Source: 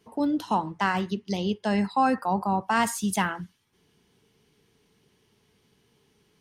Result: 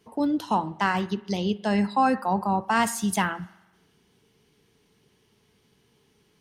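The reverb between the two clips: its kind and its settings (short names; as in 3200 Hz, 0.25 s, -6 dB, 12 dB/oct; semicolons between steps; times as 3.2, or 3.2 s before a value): spring tank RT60 1.1 s, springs 44 ms, chirp 30 ms, DRR 19.5 dB; gain +1 dB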